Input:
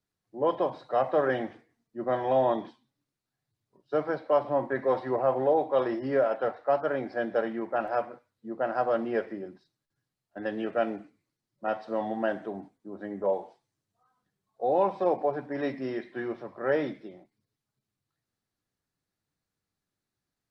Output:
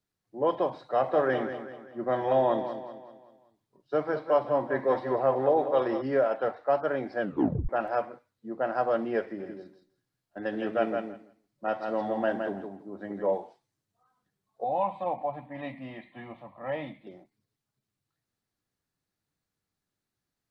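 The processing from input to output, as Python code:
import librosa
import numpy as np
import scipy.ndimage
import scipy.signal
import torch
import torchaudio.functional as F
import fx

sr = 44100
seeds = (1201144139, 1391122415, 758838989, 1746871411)

y = fx.echo_feedback(x, sr, ms=192, feedback_pct=44, wet_db=-10, at=(1.0, 6.01), fade=0.02)
y = fx.echo_feedback(y, sr, ms=165, feedback_pct=15, wet_db=-5.0, at=(9.38, 13.36), fade=0.02)
y = fx.fixed_phaser(y, sr, hz=1500.0, stages=6, at=(14.64, 17.07))
y = fx.edit(y, sr, fx.tape_stop(start_s=7.21, length_s=0.48), tone=tone)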